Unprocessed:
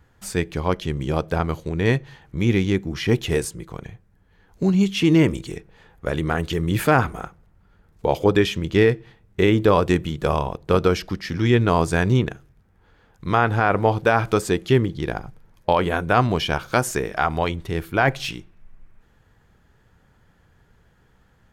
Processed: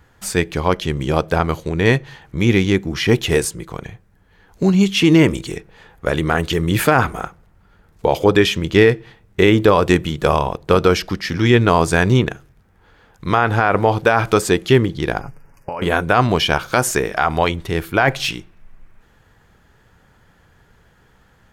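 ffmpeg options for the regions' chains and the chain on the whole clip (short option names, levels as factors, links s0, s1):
-filter_complex "[0:a]asettb=1/sr,asplit=3[s0][s1][s2];[s0]atrim=end=15.214[s3];[s1]atrim=start=15.21:end=15.82,asetpts=PTS-STARTPTS,afade=t=in:d=0.004:c=qsin,afade=t=out:st=0.606:d=0.004:c=qsin,aecho=1:1:7.2:0.48,atrim=end_sample=26901,acompressor=threshold=0.0355:ratio=8:attack=3.2:release=140:knee=1:detection=peak,asuperstop=centerf=3700:order=20:qfactor=2.2[s4];[s2]atrim=start=15.816[s5];[s3][s4]acrossfade=d=0.004:c1=hsin:c2=qsin[s6];[s6][s5]acrossfade=d=0.004:c1=qsin:c2=hsin,lowshelf=f=380:g=-4.5,alimiter=level_in=2.66:limit=0.891:release=50:level=0:latency=1,volume=0.891"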